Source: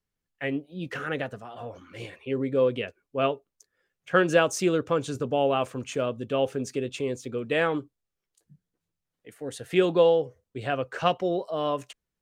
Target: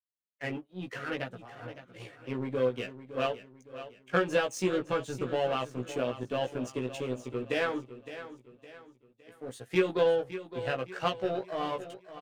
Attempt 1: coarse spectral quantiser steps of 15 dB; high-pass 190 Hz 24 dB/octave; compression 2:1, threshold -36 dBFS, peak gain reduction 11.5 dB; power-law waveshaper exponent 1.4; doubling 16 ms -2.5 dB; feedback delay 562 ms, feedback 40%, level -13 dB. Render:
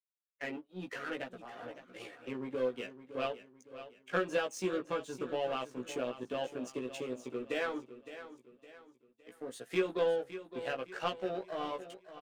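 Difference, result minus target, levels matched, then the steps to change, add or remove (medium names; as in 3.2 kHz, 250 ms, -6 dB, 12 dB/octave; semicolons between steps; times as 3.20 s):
125 Hz band -5.5 dB; compression: peak gain reduction +5 dB
change: high-pass 93 Hz 24 dB/octave; change: compression 2:1, threshold -26 dBFS, peak gain reduction 6.5 dB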